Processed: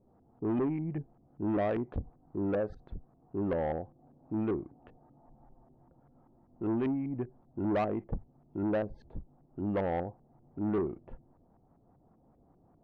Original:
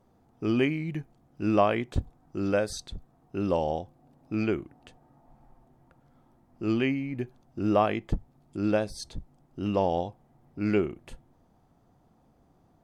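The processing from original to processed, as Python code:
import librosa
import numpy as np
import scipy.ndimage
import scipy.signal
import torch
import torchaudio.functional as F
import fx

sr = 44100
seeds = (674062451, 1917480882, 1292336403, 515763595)

y = fx.filter_lfo_lowpass(x, sr, shape='saw_up', hz=5.1, low_hz=380.0, high_hz=1500.0, q=0.89)
y = 10.0 ** (-25.0 / 20.0) * np.tanh(y / 10.0 ** (-25.0 / 20.0))
y = fx.bass_treble(y, sr, bass_db=-2, treble_db=-15)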